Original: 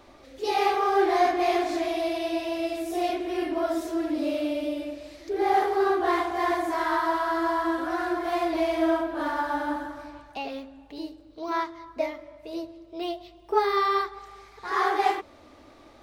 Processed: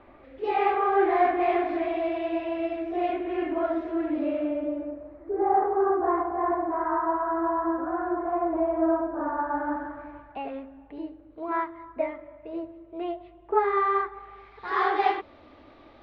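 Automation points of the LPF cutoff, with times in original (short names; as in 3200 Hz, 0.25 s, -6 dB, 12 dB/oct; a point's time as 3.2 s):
LPF 24 dB/oct
4.16 s 2500 Hz
5.05 s 1300 Hz
9.32 s 1300 Hz
10.08 s 2200 Hz
14.08 s 2200 Hz
14.69 s 3800 Hz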